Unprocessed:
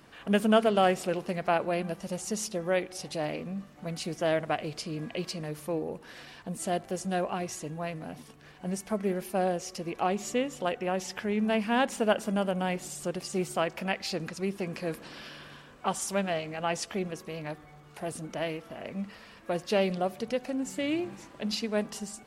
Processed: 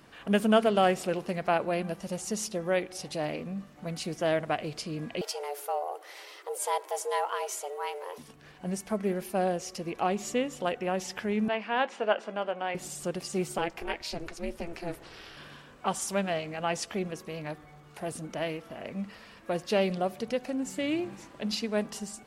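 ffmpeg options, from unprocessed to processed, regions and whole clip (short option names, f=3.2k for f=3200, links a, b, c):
-filter_complex "[0:a]asettb=1/sr,asplit=3[a][b][c];[a]atrim=end=5.214[d];[b]atrim=start=5.21:end=8.18,asetpts=PTS-STARTPTS,afade=t=in:d=0.004:c=qsin,afade=t=out:st=2.966:d=0.004:c=qsin,afreqshift=280,highshelf=f=11k:g=11.5[e];[c]atrim=start=8.176[f];[d][e]acrossfade=d=0.004:c1=hsin:c2=qsin[g];[g][f]acrossfade=d=0.004:c1=qsin:c2=hsin,asettb=1/sr,asplit=3[h][i][j];[h]atrim=end=11.484[k];[i]atrim=start=11.48:end=12.75,asetpts=PTS-STARTPTS,afade=t=in:d=0.004:c=qsin,afade=t=out:st=1.266:d=0.004:c=qsin,highpass=450,lowpass=3.3k,asplit=2[l][m];[m]adelay=19,volume=-14dB[n];[l][n]amix=inputs=2:normalize=0,atrim=end_sample=56007[o];[j]atrim=start=12.746[p];[k][o]acrossfade=d=0.004:c1=hsin:c2=qsin[q];[q][p]acrossfade=d=0.004:c1=qsin:c2=hsin,asettb=1/sr,asplit=3[r][s][t];[r]atrim=end=13.584[u];[s]atrim=start=13.58:end=15.37,asetpts=PTS-STARTPTS,afade=t=in:d=0.004:c=qsin,afade=t=out:st=1.786:d=0.004:c=qsin,asplit=2[v][w];[w]adelay=12,volume=-14dB[x];[v][x]amix=inputs=2:normalize=0,atrim=end_sample=78939,aeval=exprs='val(0)*sin(2*PI*170*n/s)':c=same[y];[t]atrim=start=15.366[z];[u][y]acrossfade=d=0.004:c1=hsin:c2=qsin[aa];[aa][z]acrossfade=d=0.004:c1=qsin:c2=hsin"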